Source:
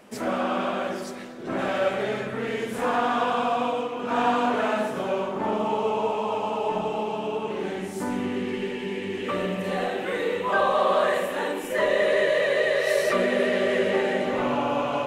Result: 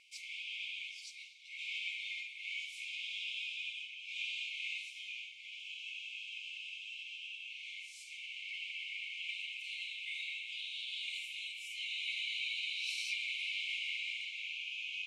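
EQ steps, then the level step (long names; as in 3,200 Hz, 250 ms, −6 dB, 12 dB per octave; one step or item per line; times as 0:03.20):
linear-phase brick-wall high-pass 2,100 Hz
high-frequency loss of the air 73 metres
high-shelf EQ 5,000 Hz −6 dB
+1.0 dB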